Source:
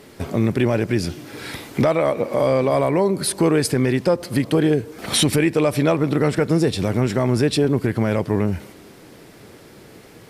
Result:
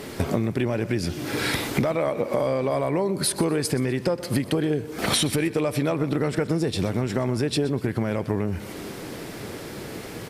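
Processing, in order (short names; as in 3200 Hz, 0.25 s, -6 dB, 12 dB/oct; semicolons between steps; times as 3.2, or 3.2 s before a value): compressor 10:1, threshold -29 dBFS, peak gain reduction 16 dB; on a send: feedback echo 0.124 s, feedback 33%, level -17 dB; on the sum: gain +8.5 dB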